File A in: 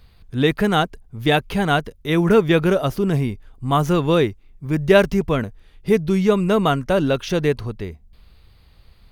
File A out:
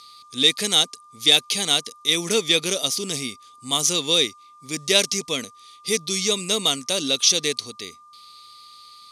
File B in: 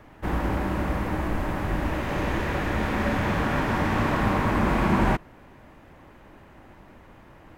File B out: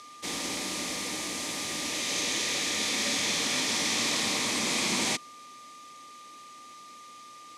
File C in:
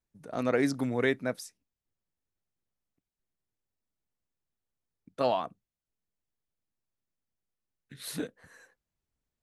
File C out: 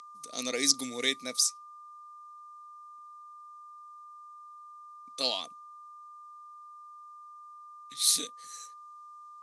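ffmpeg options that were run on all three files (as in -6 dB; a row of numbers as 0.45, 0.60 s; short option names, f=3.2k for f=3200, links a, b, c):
-af "aeval=exprs='val(0)+0.0158*sin(2*PI*1200*n/s)':c=same,aexciter=amount=13.9:drive=8.8:freq=2.4k,highpass=200,equalizer=f=260:t=q:w=4:g=6,equalizer=f=480:t=q:w=4:g=5,equalizer=f=1.3k:t=q:w=4:g=3,equalizer=f=2.8k:t=q:w=4:g=-9,equalizer=f=6.1k:t=q:w=4:g=3,lowpass=f=10k:w=0.5412,lowpass=f=10k:w=1.3066,volume=-11.5dB"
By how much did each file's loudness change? -1.0, -2.0, +3.0 LU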